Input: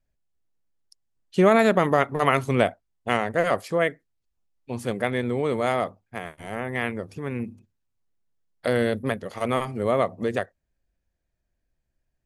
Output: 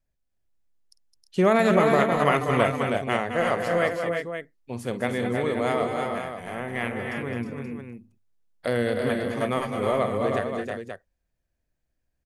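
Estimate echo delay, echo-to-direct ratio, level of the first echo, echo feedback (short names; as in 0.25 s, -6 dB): 50 ms, -1.0 dB, -15.0 dB, no steady repeat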